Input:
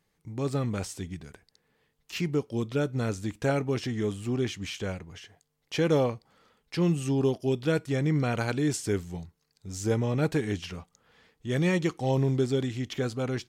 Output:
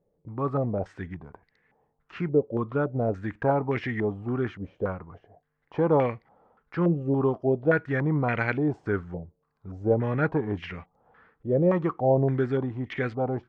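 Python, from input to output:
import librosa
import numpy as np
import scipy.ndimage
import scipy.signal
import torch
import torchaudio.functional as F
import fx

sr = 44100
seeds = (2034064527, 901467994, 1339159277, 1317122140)

y = fx.filter_held_lowpass(x, sr, hz=3.5, low_hz=550.0, high_hz=2000.0)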